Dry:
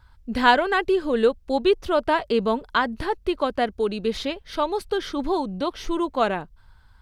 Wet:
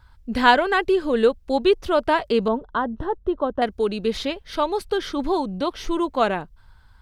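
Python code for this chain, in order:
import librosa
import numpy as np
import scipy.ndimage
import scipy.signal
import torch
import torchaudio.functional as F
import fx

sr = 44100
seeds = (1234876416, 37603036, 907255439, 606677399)

y = fx.moving_average(x, sr, points=19, at=(2.48, 3.62))
y = F.gain(torch.from_numpy(y), 1.5).numpy()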